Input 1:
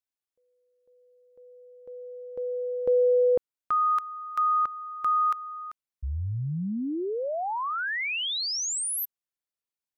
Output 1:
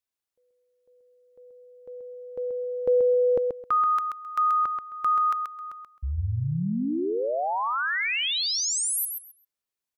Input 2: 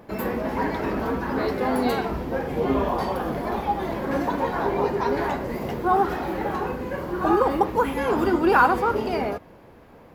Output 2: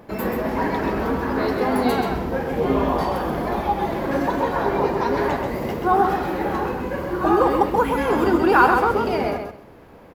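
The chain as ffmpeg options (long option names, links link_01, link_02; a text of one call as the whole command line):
ffmpeg -i in.wav -af "aecho=1:1:132|264|396:0.531|0.0956|0.0172,volume=2dB" out.wav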